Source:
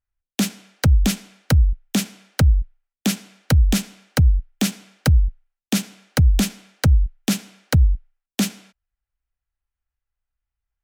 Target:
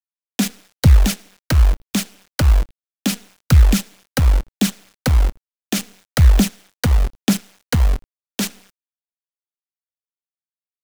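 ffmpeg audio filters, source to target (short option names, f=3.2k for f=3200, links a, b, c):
-af "aphaser=in_gain=1:out_gain=1:delay=4.2:decay=0.43:speed=1.1:type=sinusoidal,acrusher=bits=5:dc=4:mix=0:aa=0.000001"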